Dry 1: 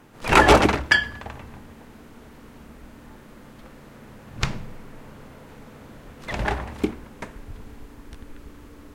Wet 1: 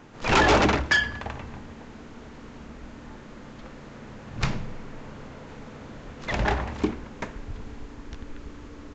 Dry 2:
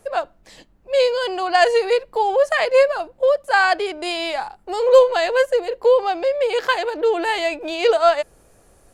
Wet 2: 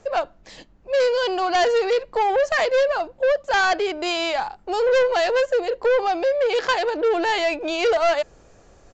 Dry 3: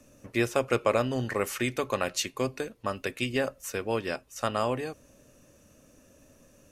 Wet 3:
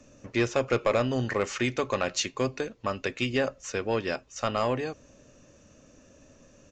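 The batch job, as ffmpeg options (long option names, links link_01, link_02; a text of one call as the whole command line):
ffmpeg -i in.wav -af "asoftclip=type=tanh:threshold=-17.5dB,aresample=16000,aresample=44100,volume=2.5dB" out.wav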